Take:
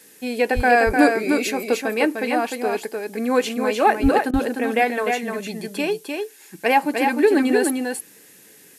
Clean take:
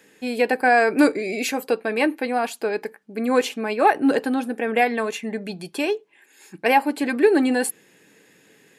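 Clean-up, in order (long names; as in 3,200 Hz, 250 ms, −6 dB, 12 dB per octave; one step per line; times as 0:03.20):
high-pass at the plosives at 0:00.55/0:04.02
repair the gap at 0:04.31, 24 ms
noise reduction from a noise print 7 dB
echo removal 302 ms −4.5 dB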